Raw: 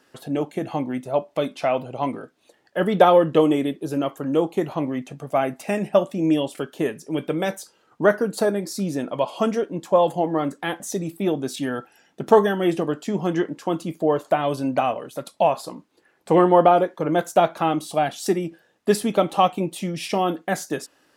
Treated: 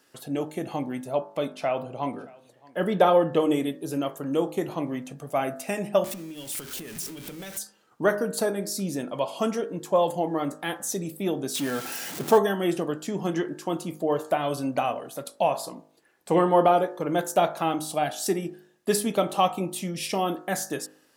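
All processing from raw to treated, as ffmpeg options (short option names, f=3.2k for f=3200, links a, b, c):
-filter_complex "[0:a]asettb=1/sr,asplit=3[a][b][c];[a]atrim=end=1.204[d];[b]atrim=start=1.2:end=3.5,asetpts=PTS-STARTPTS,afade=t=in:d=0.004:c=qsin,afade=t=out:st=2.296:d=0.004:c=qsin,highshelf=f=3.6k:g=-6.5,aecho=1:1:622:0.0631,atrim=end_sample=101430[e];[c]atrim=start=3.496[f];[d][e]acrossfade=d=0.004:c1=hsin:c2=qsin[g];[g][f]acrossfade=d=0.004:c1=qsin:c2=hsin,asettb=1/sr,asplit=3[h][i][j];[h]atrim=end=6.044[k];[i]atrim=start=6.04:end=7.59,asetpts=PTS-STARTPTS,afade=t=in:d=0.004:c=qsin,afade=t=out:st=1.546:d=0.004:c=qsin,aeval=exprs='val(0)+0.5*0.0355*sgn(val(0))':c=same,equalizer=f=590:t=o:w=2.4:g=-8.5,acompressor=threshold=-32dB:ratio=6:attack=3.2:release=140:knee=1:detection=peak[l];[j]atrim=start=7.586[m];[k][l]acrossfade=d=0.004:c1=hsin:c2=qsin[n];[n][m]acrossfade=d=0.004:c1=qsin:c2=hsin,asettb=1/sr,asplit=3[o][p][q];[o]atrim=end=11.554[r];[p]atrim=start=11.55:end=12.38,asetpts=PTS-STARTPTS,afade=t=in:d=0.004:c=qsin,afade=t=out:st=0.826:d=0.004:c=qsin,aeval=exprs='val(0)+0.5*0.0376*sgn(val(0))':c=same,highpass=83[s];[q]atrim=start=12.376[t];[r][s]acrossfade=d=0.004:c1=hsin:c2=qsin[u];[u][t]acrossfade=d=0.004:c1=qsin:c2=hsin,highshelf=f=5.7k:g=9.5,bandreject=f=51.48:t=h:w=4,bandreject=f=102.96:t=h:w=4,bandreject=f=154.44:t=h:w=4,bandreject=f=205.92:t=h:w=4,bandreject=f=257.4:t=h:w=4,bandreject=f=308.88:t=h:w=4,bandreject=f=360.36:t=h:w=4,bandreject=f=411.84:t=h:w=4,bandreject=f=463.32:t=h:w=4,bandreject=f=514.8:t=h:w=4,bandreject=f=566.28:t=h:w=4,bandreject=f=617.76:t=h:w=4,bandreject=f=669.24:t=h:w=4,bandreject=f=720.72:t=h:w=4,bandreject=f=772.2:t=h:w=4,bandreject=f=823.68:t=h:w=4,bandreject=f=875.16:t=h:w=4,bandreject=f=926.64:t=h:w=4,bandreject=f=978.12:t=h:w=4,bandreject=f=1.0296k:t=h:w=4,bandreject=f=1.08108k:t=h:w=4,bandreject=f=1.13256k:t=h:w=4,bandreject=f=1.18404k:t=h:w=4,bandreject=f=1.23552k:t=h:w=4,bandreject=f=1.287k:t=h:w=4,bandreject=f=1.33848k:t=h:w=4,bandreject=f=1.38996k:t=h:w=4,bandreject=f=1.44144k:t=h:w=4,bandreject=f=1.49292k:t=h:w=4,bandreject=f=1.5444k:t=h:w=4,bandreject=f=1.59588k:t=h:w=4,bandreject=f=1.64736k:t=h:w=4,bandreject=f=1.69884k:t=h:w=4,bandreject=f=1.75032k:t=h:w=4,bandreject=f=1.8018k:t=h:w=4,bandreject=f=1.85328k:t=h:w=4,volume=-4dB"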